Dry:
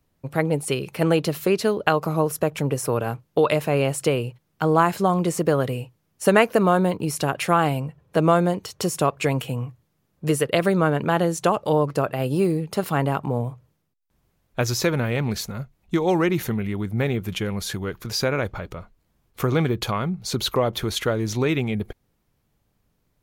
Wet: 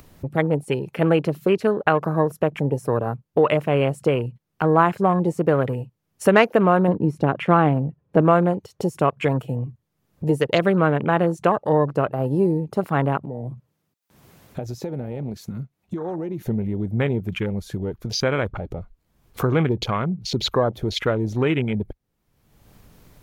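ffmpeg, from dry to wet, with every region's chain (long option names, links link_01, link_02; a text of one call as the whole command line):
ffmpeg -i in.wav -filter_complex "[0:a]asettb=1/sr,asplit=3[link_01][link_02][link_03];[link_01]atrim=end=6.884[link_04];[link_02]atrim=start=6.88:end=8.21,asetpts=PTS-STARTPTS,afade=type=in:duration=0.004:curve=qsin,afade=type=out:start_time=1.326:duration=0.004:curve=qsin,lowpass=frequency=2600:poles=1,equalizer=frequency=230:width_type=o:width=1.6:gain=5.5[link_05];[link_03]atrim=start=8.206[link_06];[link_04][link_05]acrossfade=duration=0.004:curve1=hsin:curve2=qsin[link_07];[link_07][link_06]acrossfade=duration=0.004:curve1=qsin:curve2=hsin,asettb=1/sr,asplit=3[link_08][link_09][link_10];[link_08]atrim=end=13.174[link_11];[link_09]atrim=start=13.17:end=16.47,asetpts=PTS-STARTPTS,afade=type=in:duration=0.004:curve=qsin,afade=type=out:start_time=3.296:duration=0.004:curve=qsin,highpass=110,acompressor=threshold=-31dB:ratio=3:attack=3.2:release=140:knee=1:detection=peak[link_12];[link_10]atrim=start=16.466[link_13];[link_11][link_12]acrossfade=duration=0.004:curve1=hsin:curve2=qsin[link_14];[link_14][link_13]acrossfade=duration=0.004:curve1=qsin:curve2=hsin,afwtdn=0.0251,acompressor=mode=upward:threshold=-25dB:ratio=2.5,volume=1.5dB" out.wav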